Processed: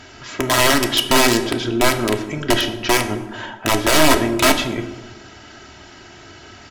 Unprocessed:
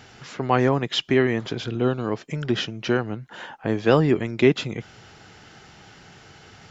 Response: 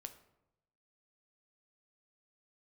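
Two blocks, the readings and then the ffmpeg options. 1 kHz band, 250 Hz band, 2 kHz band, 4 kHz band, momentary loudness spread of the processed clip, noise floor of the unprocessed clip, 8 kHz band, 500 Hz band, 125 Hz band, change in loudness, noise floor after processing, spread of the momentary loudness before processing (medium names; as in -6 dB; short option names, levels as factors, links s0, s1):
+9.0 dB, +3.5 dB, +10.0 dB, +11.5 dB, 13 LU, -49 dBFS, no reading, +2.5 dB, -1.0 dB, +6.0 dB, -42 dBFS, 13 LU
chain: -filter_complex "[0:a]aeval=exprs='(mod(5.01*val(0)+1,2)-1)/5.01':c=same,aecho=1:1:3.1:0.64[s0];[1:a]atrim=start_sample=2205,afade=t=out:st=0.4:d=0.01,atrim=end_sample=18081,asetrate=26019,aresample=44100[s1];[s0][s1]afir=irnorm=-1:irlink=0,volume=2.51"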